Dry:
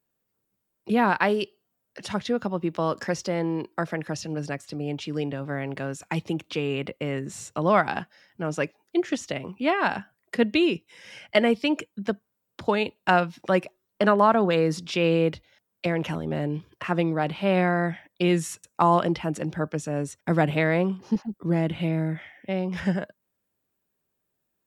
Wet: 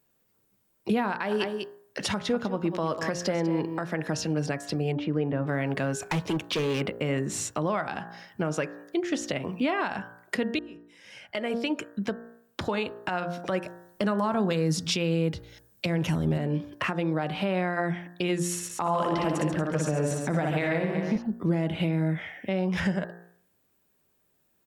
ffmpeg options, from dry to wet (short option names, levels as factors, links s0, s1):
-filter_complex "[0:a]asplit=3[s0][s1][s2];[s0]afade=t=out:st=1.3:d=0.02[s3];[s1]aecho=1:1:196:0.251,afade=t=in:st=1.3:d=0.02,afade=t=out:st=3.88:d=0.02[s4];[s2]afade=t=in:st=3.88:d=0.02[s5];[s3][s4][s5]amix=inputs=3:normalize=0,asettb=1/sr,asplit=3[s6][s7][s8];[s6]atrim=end=4.924[s9];[s7]atrim=start=4.92:end=5.47,asetpts=PTS-STARTPTS,afade=t=in:d=0.004:c=qsin,afade=t=out:st=0.546:d=0.004:c=qsin,lowpass=1700[s10];[s8]atrim=start=5.466[s11];[s9][s10]acrossfade=d=0.004:c1=hsin:c2=qsin[s12];[s12][s11]acrossfade=d=0.004:c1=qsin:c2=hsin,asplit=3[s13][s14][s15];[s13]afade=t=out:st=5.98:d=0.02[s16];[s14]volume=25.1,asoftclip=hard,volume=0.0398,afade=t=in:st=5.98:d=0.02,afade=t=out:st=6.8:d=0.02[s17];[s15]afade=t=in:st=6.8:d=0.02[s18];[s16][s17][s18]amix=inputs=3:normalize=0,asettb=1/sr,asplit=3[s19][s20][s21];[s19]atrim=end=13.654[s22];[s20]atrim=start=13.65:end=16.38,asetpts=PTS-STARTPTS,afade=t=in:d=0.004:c=qsin,afade=t=out:st=2.726:d=0.004:c=qsin,bass=f=250:g=9,treble=f=4000:g=9[s23];[s21]atrim=start=16.376[s24];[s22][s23]acrossfade=d=0.004:c1=hsin:c2=qsin[s25];[s25][s24]acrossfade=d=0.004:c1=qsin:c2=hsin,asettb=1/sr,asplit=3[s26][s27][s28];[s26]atrim=end=18.474[s29];[s27]atrim=start=18.47:end=21.18,asetpts=PTS-STARTPTS,afade=t=in:d=0.004:c=qsin,afade=t=out:st=2.706:d=0.004:c=qsin,aecho=1:1:60|138|239.4|371.2|542.6:0.631|0.398|0.251|0.158|0.1,atrim=end_sample=119511[s30];[s28]atrim=start=21.176[s31];[s29][s30]acrossfade=d=0.004:c1=hsin:c2=qsin[s32];[s32][s31]acrossfade=d=0.004:c1=qsin:c2=hsin,asplit=2[s33][s34];[s33]atrim=end=10.59,asetpts=PTS-STARTPTS,afade=t=out:st=10.586:d=0.004:c=hsin[s35];[s34]atrim=start=10.59,asetpts=PTS-STARTPTS,afade=t=in:d=2.08[s36];[s35][s36]concat=n=2:v=0:a=1,bandreject=f=58.35:t=h:w=4,bandreject=f=116.7:t=h:w=4,bandreject=f=175.05:t=h:w=4,bandreject=f=233.4:t=h:w=4,bandreject=f=291.75:t=h:w=4,bandreject=f=350.1:t=h:w=4,bandreject=f=408.45:t=h:w=4,bandreject=f=466.8:t=h:w=4,bandreject=f=525.15:t=h:w=4,bandreject=f=583.5:t=h:w=4,bandreject=f=641.85:t=h:w=4,bandreject=f=700.2:t=h:w=4,bandreject=f=758.55:t=h:w=4,bandreject=f=816.9:t=h:w=4,bandreject=f=875.25:t=h:w=4,bandreject=f=933.6:t=h:w=4,bandreject=f=991.95:t=h:w=4,bandreject=f=1050.3:t=h:w=4,bandreject=f=1108.65:t=h:w=4,bandreject=f=1167:t=h:w=4,bandreject=f=1225.35:t=h:w=4,bandreject=f=1283.7:t=h:w=4,bandreject=f=1342.05:t=h:w=4,bandreject=f=1400.4:t=h:w=4,bandreject=f=1458.75:t=h:w=4,bandreject=f=1517.1:t=h:w=4,bandreject=f=1575.45:t=h:w=4,bandreject=f=1633.8:t=h:w=4,bandreject=f=1692.15:t=h:w=4,bandreject=f=1750.5:t=h:w=4,bandreject=f=1808.85:t=h:w=4,bandreject=f=1867.2:t=h:w=4,acompressor=threshold=0.0158:ratio=2,alimiter=level_in=1.12:limit=0.0631:level=0:latency=1:release=177,volume=0.891,volume=2.66"